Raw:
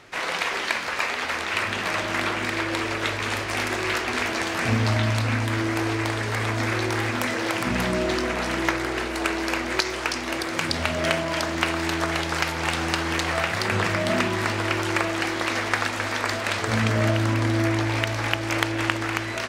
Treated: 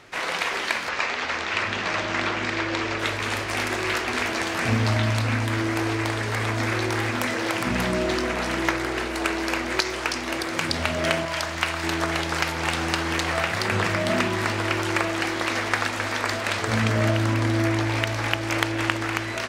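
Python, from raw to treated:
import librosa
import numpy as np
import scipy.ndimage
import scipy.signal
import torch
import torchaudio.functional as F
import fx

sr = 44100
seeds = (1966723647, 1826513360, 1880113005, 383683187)

y = fx.lowpass(x, sr, hz=7000.0, slope=24, at=(0.89, 2.99))
y = fx.peak_eq(y, sr, hz=290.0, db=-9.5, octaves=1.6, at=(11.25, 11.84))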